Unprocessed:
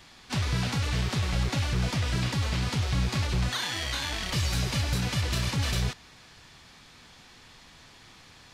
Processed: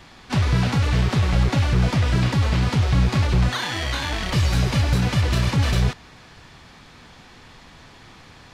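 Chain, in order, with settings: treble shelf 2.6 kHz -9.5 dB; trim +9 dB

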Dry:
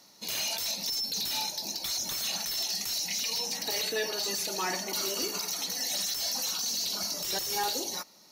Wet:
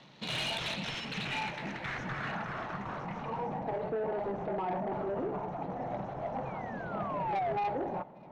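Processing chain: median filter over 9 samples; peaking EQ 140 Hz +13 dB 0.68 oct; peak limiter -29 dBFS, peak gain reduction 7 dB; reverse; upward compressor, threshold -51 dBFS; reverse; painted sound fall, 6.45–7.53 s, 640–2500 Hz -40 dBFS; low-pass sweep 3.7 kHz -> 760 Hz, 0.54–3.76 s; saturation -32 dBFS, distortion -14 dB; feedback echo behind a high-pass 292 ms, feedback 64%, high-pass 1.8 kHz, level -21 dB; trim +4 dB

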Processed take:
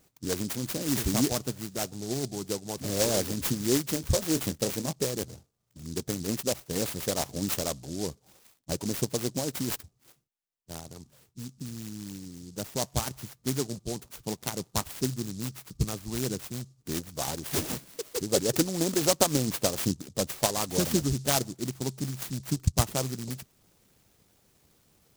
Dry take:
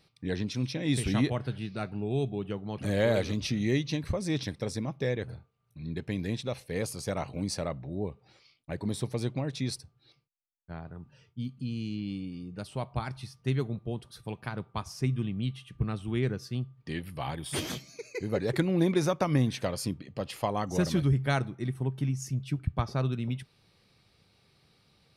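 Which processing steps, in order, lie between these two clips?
rattle on loud lows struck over -27 dBFS, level -37 dBFS; harmonic-percussive split harmonic -12 dB; 3.94–4.93 s: doubling 25 ms -10.5 dB; delay time shaken by noise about 5.9 kHz, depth 0.17 ms; trim +6 dB

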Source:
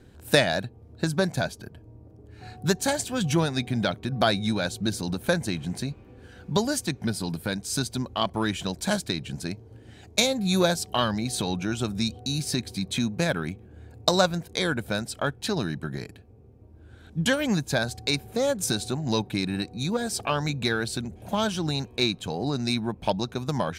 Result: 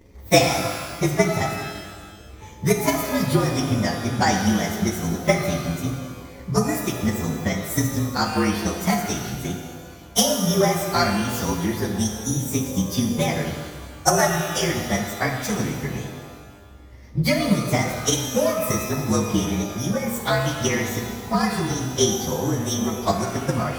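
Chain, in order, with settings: frequency axis rescaled in octaves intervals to 115%; transient shaper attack +7 dB, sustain 0 dB; pitch-shifted reverb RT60 1.6 s, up +12 st, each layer -8 dB, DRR 3 dB; trim +3 dB

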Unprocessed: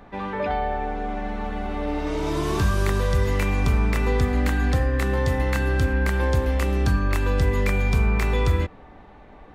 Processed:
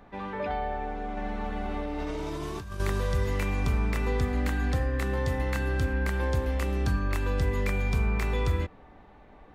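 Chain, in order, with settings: 1.17–2.80 s: compressor with a negative ratio -27 dBFS, ratio -1; trim -6 dB

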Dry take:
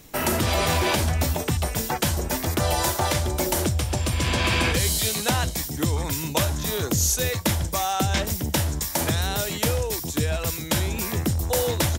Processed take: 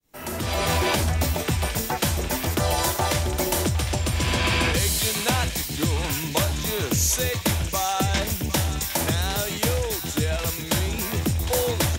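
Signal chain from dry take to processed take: fade-in on the opening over 0.74 s; on a send: band-passed feedback delay 759 ms, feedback 72%, band-pass 2.8 kHz, level -8 dB

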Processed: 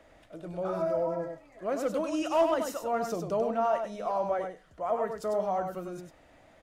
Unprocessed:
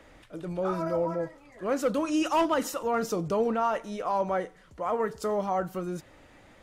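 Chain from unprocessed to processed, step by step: peaking EQ 660 Hz +10.5 dB 0.29 oct; on a send: delay 98 ms -6 dB; on the sum: trim -6 dB

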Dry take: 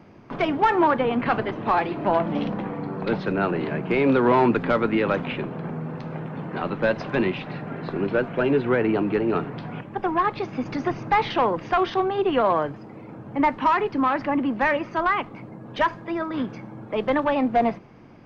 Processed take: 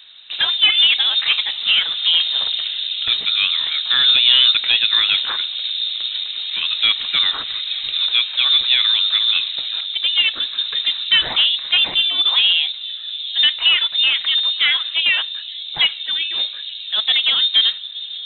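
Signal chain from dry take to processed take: feedback echo behind a low-pass 869 ms, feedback 74%, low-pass 440 Hz, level -11 dB; frequency inversion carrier 3.9 kHz; trim +5 dB

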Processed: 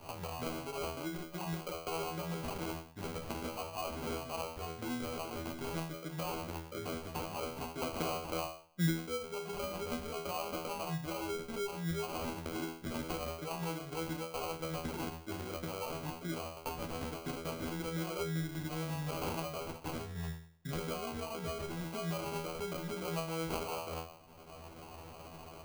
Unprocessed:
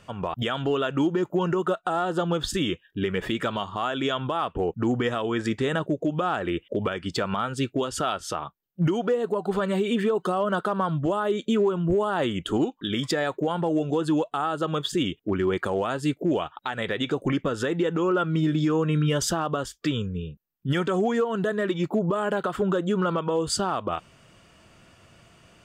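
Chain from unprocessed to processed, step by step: peaking EQ 330 Hz -14 dB 2.8 oct, from 7.82 s +3.5 dB, from 8.90 s -12 dB; feedback comb 82 Hz, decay 0.45 s, harmonics all, mix 100%; sample-rate reducer 1.8 kHz, jitter 0%; three bands compressed up and down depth 70%; trim +4 dB

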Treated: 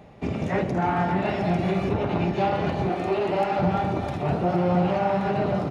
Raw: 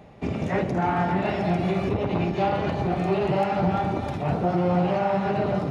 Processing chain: 2.89–3.59 s: high-pass 240 Hz 24 dB/octave; delay 1125 ms -11.5 dB

